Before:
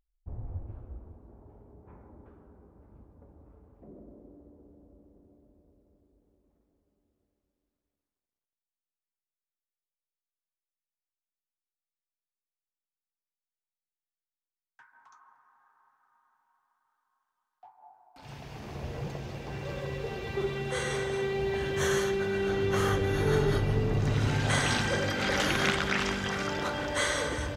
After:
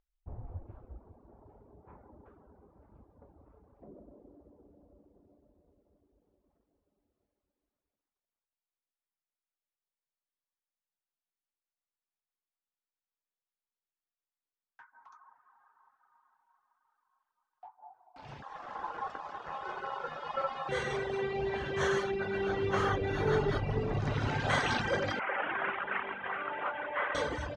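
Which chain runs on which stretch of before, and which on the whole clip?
0:18.42–0:20.69: parametric band 3,100 Hz −5 dB 0.32 octaves + ring modulation 940 Hz
0:25.19–0:27.15: variable-slope delta modulation 16 kbit/s + resonant band-pass 1,400 Hz, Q 0.6
whole clip: parametric band 890 Hz +7 dB 2.2 octaves; reverb reduction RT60 0.79 s; low-pass filter 5,300 Hz 12 dB per octave; level −4 dB

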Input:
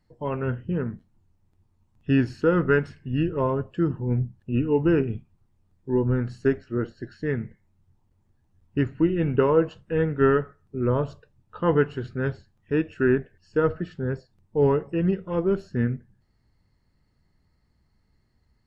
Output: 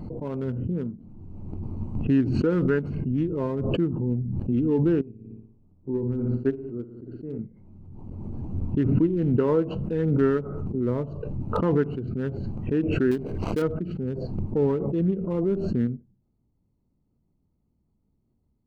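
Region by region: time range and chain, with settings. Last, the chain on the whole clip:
0:05.01–0:07.39: low-pass filter 4,000 Hz + flutter between parallel walls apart 9.9 metres, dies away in 0.57 s + expander for the loud parts 2.5 to 1, over −36 dBFS
0:13.11–0:13.62: gap after every zero crossing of 0.18 ms + low-shelf EQ 460 Hz −4 dB + upward compression, threshold −42 dBFS
whole clip: adaptive Wiener filter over 25 samples; parametric band 250 Hz +8.5 dB 1.7 octaves; background raised ahead of every attack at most 25 dB per second; level −8 dB

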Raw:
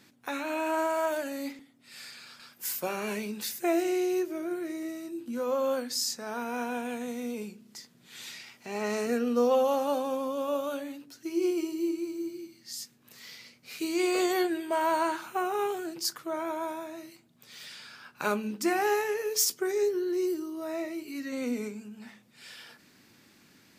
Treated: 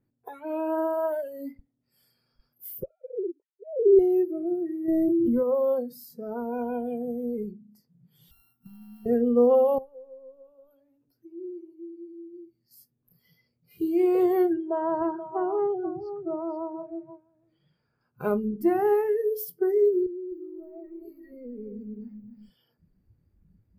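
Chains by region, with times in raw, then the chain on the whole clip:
0:02.83–0:03.99: three sine waves on the formant tracks + resonant band-pass 390 Hz, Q 4.3 + comb filter 2.1 ms, depth 77%
0:04.88–0:05.43: hollow resonant body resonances 340/640/930/2,000 Hz, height 7 dB, ringing for 85 ms + envelope flattener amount 100%
0:08.31–0:09.06: samples sorted by size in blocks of 32 samples + Chebyshev band-stop filter 360–720 Hz, order 4 + downward compressor 8 to 1, threshold −40 dBFS
0:09.78–0:12.71: downward compressor 2.5 to 1, threshold −48 dBFS + notch filter 300 Hz, Q 7
0:14.53–0:18.01: high-frequency loss of the air 270 metres + single-tap delay 481 ms −10 dB
0:20.06–0:22.49: downward compressor 8 to 1, threshold −40 dBFS + feedback echo at a low word length 259 ms, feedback 55%, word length 11 bits, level −7 dB
whole clip: drawn EQ curve 120 Hz 0 dB, 200 Hz −7 dB, 470 Hz 0 dB, 2,300 Hz −8 dB, 6,900 Hz −18 dB, 13,000 Hz +12 dB; noise reduction from a noise print of the clip's start 21 dB; spectral tilt −4.5 dB per octave; level +1.5 dB

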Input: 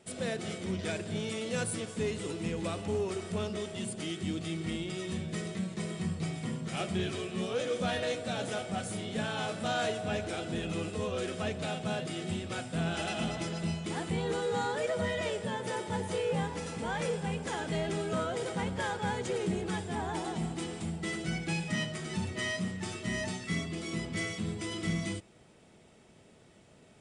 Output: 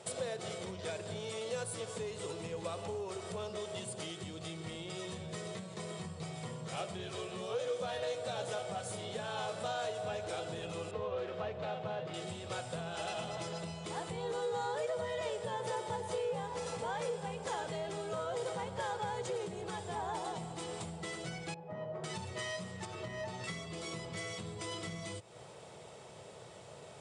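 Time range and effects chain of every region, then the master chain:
0:10.91–0:12.14: phase distortion by the signal itself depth 0.078 ms + low-pass filter 2,700 Hz
0:21.54–0:22.04: Chebyshev low-pass filter 650 Hz + low-shelf EQ 330 Hz −10.5 dB
0:22.85–0:23.44: low-pass filter 2,100 Hz 6 dB per octave + downward compressor 3 to 1, threshold −39 dBFS
whole clip: high-pass filter 76 Hz; downward compressor, threshold −45 dBFS; graphic EQ with 10 bands 125 Hz +8 dB, 250 Hz −10 dB, 500 Hz +10 dB, 1,000 Hz +9 dB, 4,000 Hz +6 dB, 8,000 Hz +6 dB; level +1.5 dB

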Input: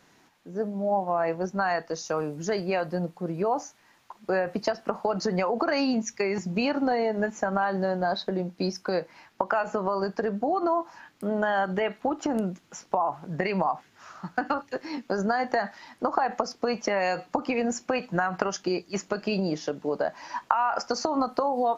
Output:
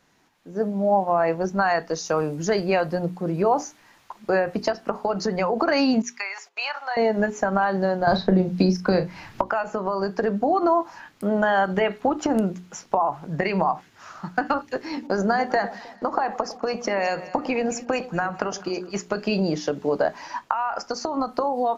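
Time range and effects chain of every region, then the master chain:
0:06.02–0:06.97: inverse Chebyshev high-pass filter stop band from 150 Hz, stop band 80 dB + noise gate −56 dBFS, range −15 dB + high-shelf EQ 5,700 Hz −8.5 dB
0:08.07–0:09.41: bass and treble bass +11 dB, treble −3 dB + double-tracking delay 38 ms −10 dB + multiband upward and downward compressor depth 100%
0:14.92–0:18.95: noise gate −53 dBFS, range −15 dB + delay that swaps between a low-pass and a high-pass 104 ms, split 890 Hz, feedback 60%, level −12 dB
whole clip: low-shelf EQ 76 Hz +7 dB; mains-hum notches 60/120/180/240/300/360/420 Hz; automatic gain control gain up to 10 dB; level −4 dB

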